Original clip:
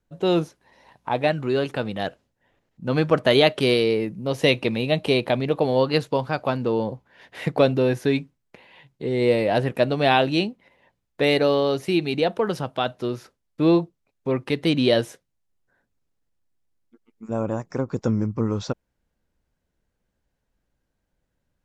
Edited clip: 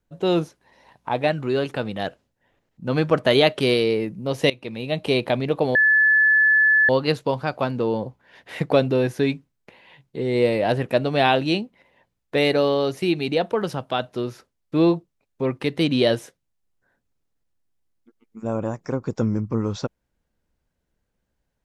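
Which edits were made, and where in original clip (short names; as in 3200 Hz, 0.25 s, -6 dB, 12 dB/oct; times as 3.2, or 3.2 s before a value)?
4.5–5.17 fade in, from -19.5 dB
5.75 add tone 1730 Hz -13 dBFS 1.14 s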